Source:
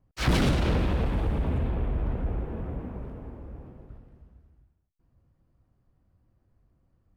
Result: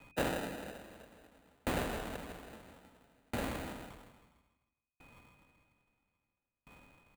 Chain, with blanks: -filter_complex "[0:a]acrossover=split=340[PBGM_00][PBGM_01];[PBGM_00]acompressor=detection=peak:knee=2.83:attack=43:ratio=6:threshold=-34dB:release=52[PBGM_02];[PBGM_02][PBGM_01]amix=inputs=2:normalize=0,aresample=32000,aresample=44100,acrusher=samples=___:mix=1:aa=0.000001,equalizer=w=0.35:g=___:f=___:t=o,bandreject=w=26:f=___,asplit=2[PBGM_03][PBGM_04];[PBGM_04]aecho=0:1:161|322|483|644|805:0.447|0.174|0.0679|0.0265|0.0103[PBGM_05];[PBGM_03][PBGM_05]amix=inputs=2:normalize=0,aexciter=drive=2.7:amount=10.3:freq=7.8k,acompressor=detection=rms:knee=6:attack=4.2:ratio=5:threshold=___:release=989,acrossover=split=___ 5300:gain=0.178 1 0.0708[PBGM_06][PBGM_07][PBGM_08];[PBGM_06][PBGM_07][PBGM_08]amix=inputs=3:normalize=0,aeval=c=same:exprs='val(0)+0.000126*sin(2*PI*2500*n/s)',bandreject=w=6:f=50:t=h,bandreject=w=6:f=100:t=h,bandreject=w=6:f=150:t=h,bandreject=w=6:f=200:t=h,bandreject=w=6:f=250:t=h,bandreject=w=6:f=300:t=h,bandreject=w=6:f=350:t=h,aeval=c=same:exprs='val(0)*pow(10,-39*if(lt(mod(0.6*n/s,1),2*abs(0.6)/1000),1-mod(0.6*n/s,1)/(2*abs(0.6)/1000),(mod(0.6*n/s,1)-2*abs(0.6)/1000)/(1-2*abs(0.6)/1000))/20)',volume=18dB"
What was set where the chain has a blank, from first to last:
40, -6, 370, 5k, -31dB, 200